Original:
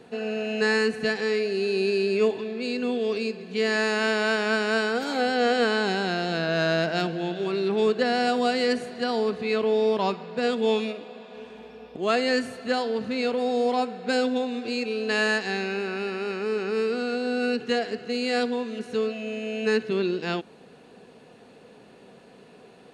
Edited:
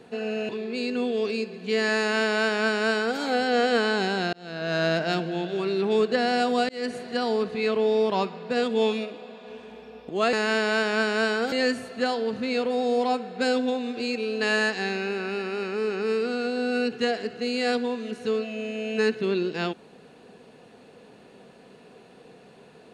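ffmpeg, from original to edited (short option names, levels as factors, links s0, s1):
-filter_complex "[0:a]asplit=6[s0][s1][s2][s3][s4][s5];[s0]atrim=end=0.492[s6];[s1]atrim=start=2.358:end=6.2,asetpts=PTS-STARTPTS,afade=t=out:st=3.838:d=0.004:c=hsin[s7];[s2]atrim=start=6.2:end=8.56,asetpts=PTS-STARTPTS,afade=t=in:d=0.53,afade=t=out:st=2.356:d=0.004:c=hsin[s8];[s3]atrim=start=8.56:end=12.202,asetpts=PTS-STARTPTS,afade=t=in:d=0.28[s9];[s4]atrim=start=3.858:end=5.052[s10];[s5]atrim=start=12.198[s11];[s7][s8][s9]concat=n=3:v=0:a=1[s12];[s6][s12]acrossfade=d=0.004:c1=hsin:c2=hsin[s13];[s13][s10]acrossfade=d=0.004:c1=hsin:c2=hsin[s14];[s14][s11]acrossfade=d=0.004:c1=hsin:c2=hsin"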